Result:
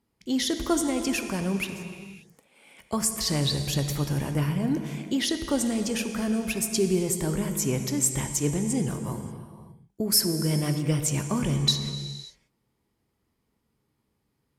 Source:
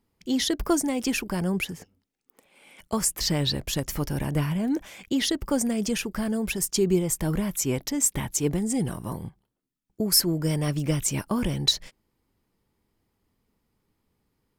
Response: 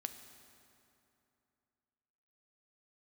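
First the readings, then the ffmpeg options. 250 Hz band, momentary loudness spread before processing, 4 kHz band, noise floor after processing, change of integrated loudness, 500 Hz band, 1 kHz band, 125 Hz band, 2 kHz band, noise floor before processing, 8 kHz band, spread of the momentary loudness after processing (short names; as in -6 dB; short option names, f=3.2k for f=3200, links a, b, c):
-0.5 dB, 7 LU, -1.0 dB, -76 dBFS, -0.5 dB, -1.0 dB, -0.5 dB, +1.5 dB, -0.5 dB, -78 dBFS, -0.5 dB, 10 LU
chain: -filter_complex "[0:a]highpass=45[a];[1:a]atrim=start_sample=2205,afade=t=out:st=0.38:d=0.01,atrim=end_sample=17199,asetrate=24696,aresample=44100[b];[a][b]afir=irnorm=-1:irlink=0,volume=-1.5dB"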